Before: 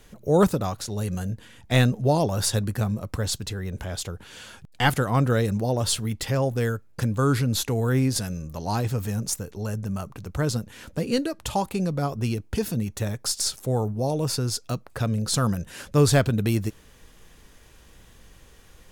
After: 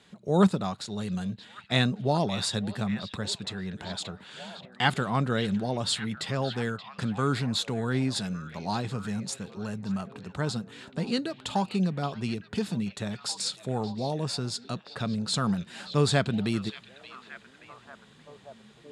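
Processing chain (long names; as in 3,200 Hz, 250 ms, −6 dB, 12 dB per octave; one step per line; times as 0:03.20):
loudspeaker in its box 160–8,100 Hz, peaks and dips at 190 Hz +6 dB, 300 Hz −4 dB, 510 Hz −6 dB, 3,800 Hz +6 dB, 6,000 Hz −9 dB
pitch vibrato 6.5 Hz 9.4 cents
echo through a band-pass that steps 578 ms, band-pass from 3,000 Hz, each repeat −0.7 octaves, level −9 dB
level −2.5 dB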